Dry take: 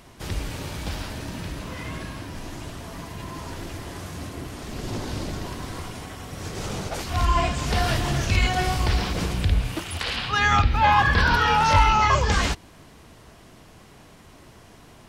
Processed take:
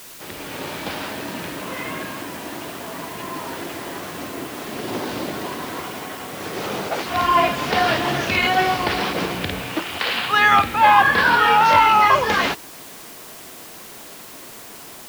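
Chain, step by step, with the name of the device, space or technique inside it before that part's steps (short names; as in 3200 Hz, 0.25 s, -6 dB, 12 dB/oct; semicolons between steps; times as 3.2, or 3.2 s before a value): dictaphone (BPF 270–3600 Hz; AGC gain up to 8 dB; wow and flutter 26 cents; white noise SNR 19 dB)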